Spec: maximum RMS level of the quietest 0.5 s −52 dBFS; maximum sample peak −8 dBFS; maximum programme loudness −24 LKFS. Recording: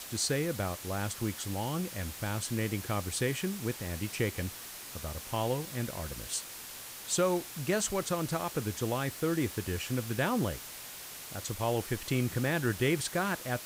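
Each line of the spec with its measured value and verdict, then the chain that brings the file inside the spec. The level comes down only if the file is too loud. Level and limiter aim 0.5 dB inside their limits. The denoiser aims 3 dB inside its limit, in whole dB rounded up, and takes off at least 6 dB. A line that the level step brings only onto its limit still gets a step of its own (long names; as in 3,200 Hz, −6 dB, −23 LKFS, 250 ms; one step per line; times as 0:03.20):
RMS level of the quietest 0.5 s −45 dBFS: out of spec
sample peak −16.0 dBFS: in spec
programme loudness −33.0 LKFS: in spec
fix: broadband denoise 10 dB, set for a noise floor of −45 dBFS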